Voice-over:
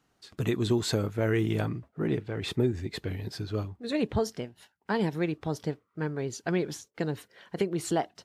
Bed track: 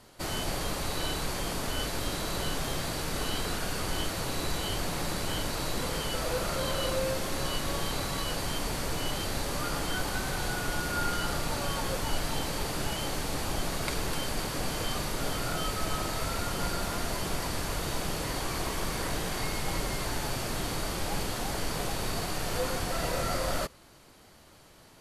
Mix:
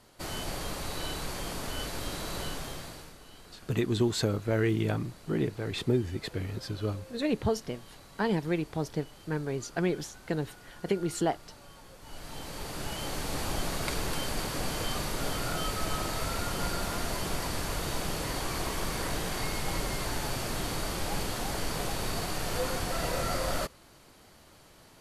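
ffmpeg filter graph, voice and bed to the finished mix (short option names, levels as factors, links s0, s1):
-filter_complex "[0:a]adelay=3300,volume=0.944[s0];[1:a]volume=6.31,afade=t=out:st=2.41:d=0.76:silence=0.149624,afade=t=in:st=11.99:d=1.43:silence=0.105925[s1];[s0][s1]amix=inputs=2:normalize=0"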